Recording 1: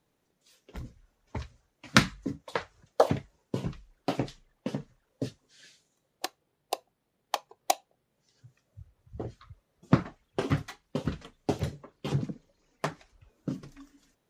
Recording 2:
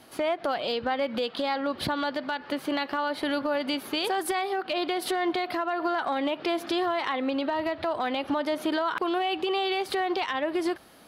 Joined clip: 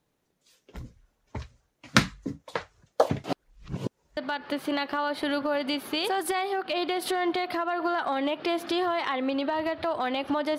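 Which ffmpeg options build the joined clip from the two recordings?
-filter_complex "[0:a]apad=whole_dur=10.58,atrim=end=10.58,asplit=2[a][b];[a]atrim=end=3.242[c];[b]atrim=start=3.238:end=4.172,asetpts=PTS-STARTPTS,areverse[d];[1:a]atrim=start=2.168:end=8.58[e];[c][d]acrossfade=d=0.004:c1=hsin:c2=hsin[f];[f][e]acrossfade=d=0.004:c1=hsin:c2=hsin"

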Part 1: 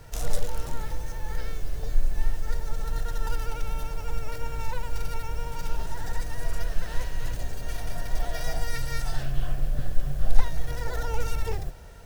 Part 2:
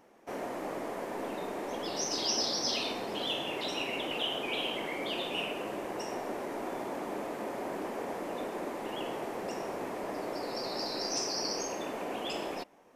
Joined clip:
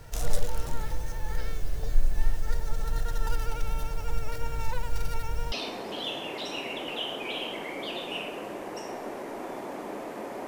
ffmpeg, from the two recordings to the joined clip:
-filter_complex "[0:a]apad=whole_dur=10.47,atrim=end=10.47,atrim=end=5.522[a];[1:a]atrim=start=2.748:end=7.7[b];[a][b]acrossfade=d=0.004:c1=hsin:c2=hsin"

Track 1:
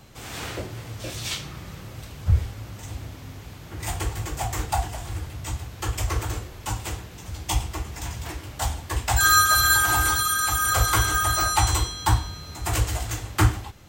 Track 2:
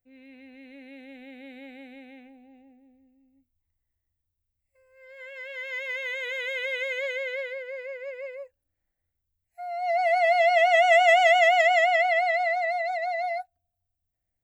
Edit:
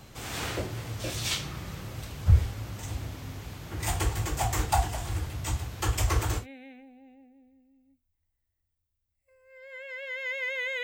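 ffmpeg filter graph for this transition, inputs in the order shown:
-filter_complex "[0:a]apad=whole_dur=10.83,atrim=end=10.83,atrim=end=6.47,asetpts=PTS-STARTPTS[a];[1:a]atrim=start=1.84:end=6.3,asetpts=PTS-STARTPTS[b];[a][b]acrossfade=d=0.1:c1=tri:c2=tri"

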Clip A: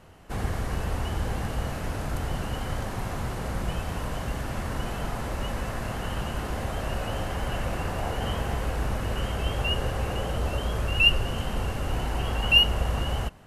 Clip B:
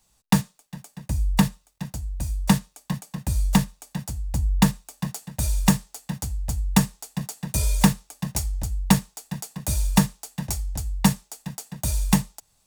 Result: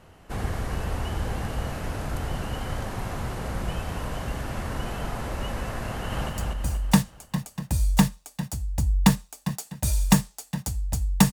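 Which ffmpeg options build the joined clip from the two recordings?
-filter_complex "[0:a]apad=whole_dur=11.32,atrim=end=11.32,atrim=end=6.292[a];[1:a]atrim=start=1.848:end=6.88[b];[a][b]acrossfade=d=0.004:c1=hsin:c2=hsin,asplit=2[c][d];[d]afade=t=in:st=5.87:d=0.01,afade=t=out:st=6.29:d=0.01,aecho=0:1:240|480|720|960|1200|1440|1680:0.707946|0.353973|0.176986|0.0884932|0.0442466|0.0221233|0.0110617[e];[c][e]amix=inputs=2:normalize=0"

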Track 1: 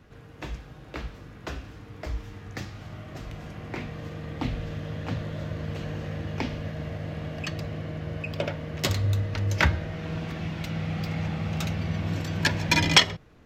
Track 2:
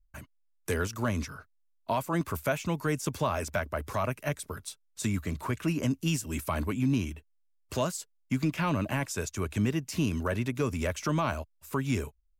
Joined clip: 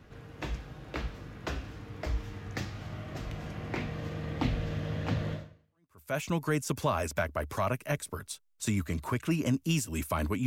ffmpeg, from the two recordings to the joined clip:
-filter_complex "[0:a]apad=whole_dur=10.46,atrim=end=10.46,atrim=end=6.17,asetpts=PTS-STARTPTS[a];[1:a]atrim=start=1.7:end=6.83,asetpts=PTS-STARTPTS[b];[a][b]acrossfade=d=0.84:c1=exp:c2=exp"

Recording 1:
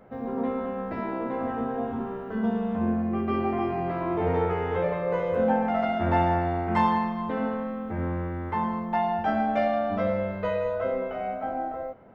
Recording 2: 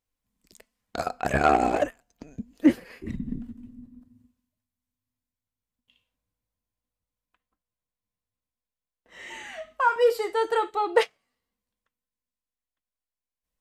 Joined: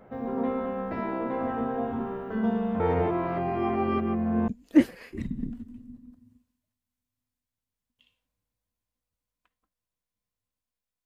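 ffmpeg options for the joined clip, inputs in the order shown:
-filter_complex "[0:a]apad=whole_dur=11.05,atrim=end=11.05,asplit=2[a][b];[a]atrim=end=2.802[c];[b]atrim=start=2.798:end=4.482,asetpts=PTS-STARTPTS,areverse[d];[1:a]atrim=start=2.368:end=8.94[e];[c][d]acrossfade=d=0.004:c1=hsin:c2=hsin[f];[f][e]acrossfade=d=0.004:c1=hsin:c2=hsin"

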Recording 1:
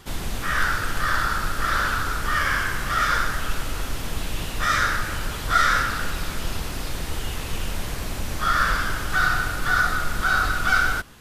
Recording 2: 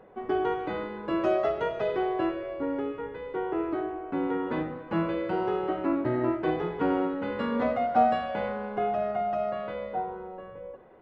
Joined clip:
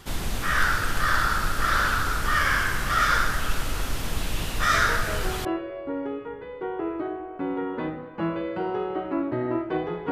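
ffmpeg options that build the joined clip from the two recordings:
-filter_complex "[1:a]asplit=2[a][b];[0:a]apad=whole_dur=10.11,atrim=end=10.11,atrim=end=5.452[c];[b]atrim=start=2.178:end=6.84[d];[a]atrim=start=1.47:end=2.18,asetpts=PTS-STARTPTS,volume=-6.5dB,afade=t=in:d=0.004:c=hsin,afade=t=out:st=0.706:d=0.004:c=hsin,adelay=4740[e];[c][d]acrossfade=d=0.004:c1=hsin:c2=hsin[f];[f][e]amix=inputs=2:normalize=0"

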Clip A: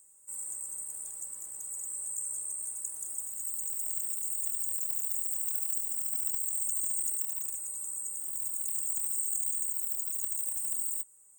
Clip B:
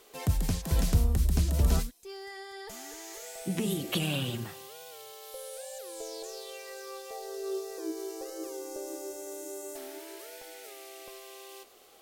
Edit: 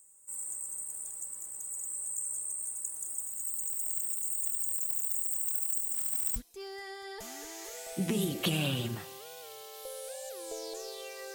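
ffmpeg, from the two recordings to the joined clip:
-filter_complex "[0:a]asettb=1/sr,asplit=3[a][b][c];[a]atrim=end=5.944[d];[b]atrim=start=5.94:end=6.36,asetpts=PTS-STARTPTS,afade=t=in:d=0.004:c=qsin,afade=t=out:st=0.416:d=0.004:c=qsin,acrusher=bits=4:mode=log:mix=0:aa=0.000001[e];[c]atrim=start=6.356[f];[d][e]acrossfade=d=0.004:c1=hsin:c2=qsin[g];[g][f]acrossfade=d=0.004:c1=qsin:c2=hsin,apad=whole_dur=11.34,atrim=end=11.34,atrim=end=6.362[h];[1:a]atrim=start=1.848:end=6.83[i];[h][i]acrossfade=d=0.004:c1=hsin:c2=hsin"

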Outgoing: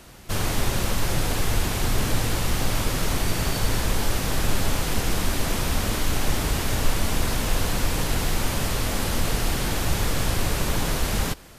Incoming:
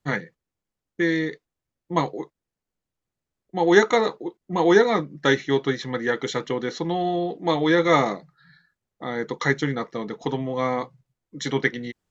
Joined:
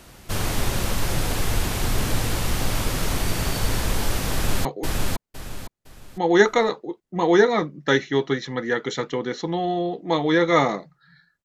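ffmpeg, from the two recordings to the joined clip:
-filter_complex "[0:a]apad=whole_dur=11.44,atrim=end=11.44,atrim=end=4.652[a];[1:a]atrim=start=2.018:end=8.81[b];[a][b]acrossfade=d=0.004:c1=hsin:c2=hsin,asplit=2[c][d];[d]afade=t=in:st=4.32:d=0.01,afade=t=out:st=4.65:d=0.01,aecho=0:1:510|1020|1530|2040:0.841395|0.252419|0.0757256|0.0227177[e];[c][e]amix=inputs=2:normalize=0"

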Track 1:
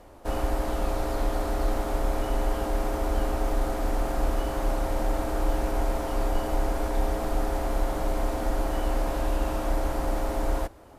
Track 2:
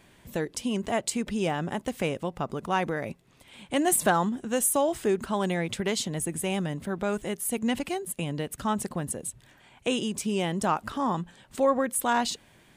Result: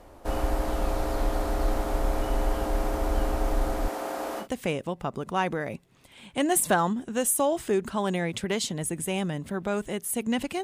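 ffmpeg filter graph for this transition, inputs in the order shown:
-filter_complex "[0:a]asettb=1/sr,asplit=3[a][b][c];[a]atrim=end=3.884[d];[b]atrim=start=3.88:end=4.48,asetpts=PTS-STARTPTS,afade=t=in:d=0.004:c=qsin,afade=t=out:st=0.596:d=0.004:c=qsin,highpass=340[e];[c]atrim=start=4.476[f];[d][e]acrossfade=d=0.004:c1=hsin:c2=qsin[g];[g][f]acrossfade=d=0.004:c1=qsin:c2=hsin,apad=whole_dur=10.63,atrim=end=10.63,atrim=end=4.48,asetpts=PTS-STARTPTS[h];[1:a]atrim=start=1.74:end=7.99,asetpts=PTS-STARTPTS[i];[h][i]acrossfade=d=0.1:c1=tri:c2=tri"

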